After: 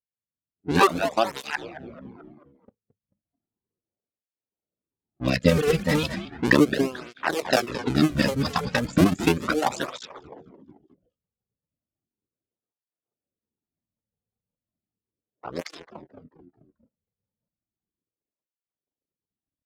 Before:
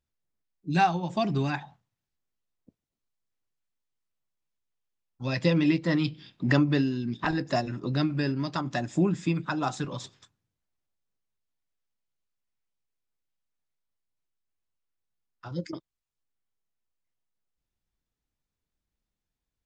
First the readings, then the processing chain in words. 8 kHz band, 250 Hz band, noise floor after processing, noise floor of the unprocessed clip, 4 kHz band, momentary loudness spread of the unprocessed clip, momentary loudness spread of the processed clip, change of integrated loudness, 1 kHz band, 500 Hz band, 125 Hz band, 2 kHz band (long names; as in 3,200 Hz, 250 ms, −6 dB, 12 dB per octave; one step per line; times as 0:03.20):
can't be measured, +3.0 dB, below −85 dBFS, below −85 dBFS, +7.0 dB, 13 LU, 18 LU, +4.5 dB, +3.5 dB, +7.5 dB, +0.5 dB, +6.5 dB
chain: sub-harmonics by changed cycles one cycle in 2, muted
reverb reduction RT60 0.94 s
echo with shifted repeats 219 ms, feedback 50%, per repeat −110 Hz, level −11 dB
noise reduction from a noise print of the clip's start 10 dB
low-shelf EQ 200 Hz −7 dB
automatic gain control gain up to 14 dB
rotating-speaker cabinet horn 0.75 Hz, later 5.5 Hz, at 0:07.76
low-pass that shuts in the quiet parts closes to 690 Hz, open at −21 dBFS
through-zero flanger with one copy inverted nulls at 0.35 Hz, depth 3.3 ms
level +3.5 dB